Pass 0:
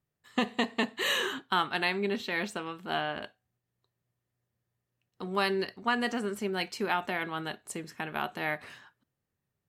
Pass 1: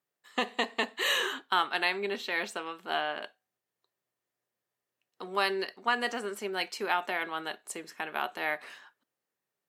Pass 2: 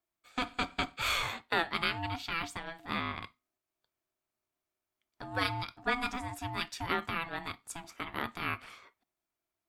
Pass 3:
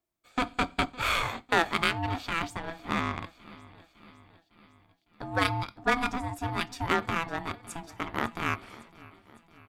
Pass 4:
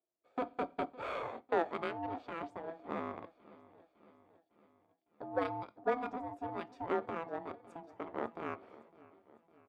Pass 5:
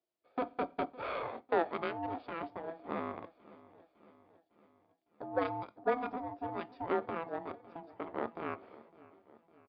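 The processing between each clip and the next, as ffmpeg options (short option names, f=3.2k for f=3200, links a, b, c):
-af "highpass=390,volume=1dB"
-af "lowshelf=f=240:t=q:w=1.5:g=7,aeval=exprs='val(0)*sin(2*PI*500*n/s)':c=same"
-filter_complex "[0:a]aecho=1:1:556|1112|1668|2224|2780:0.126|0.0743|0.0438|0.0259|0.0153,asplit=2[a][b];[b]adynamicsmooth=sensitivity=3.5:basefreq=860,volume=1dB[c];[a][c]amix=inputs=2:normalize=0"
-af "bandpass=f=500:t=q:w=1.9:csg=0"
-af "aresample=11025,aresample=44100,volume=1.5dB"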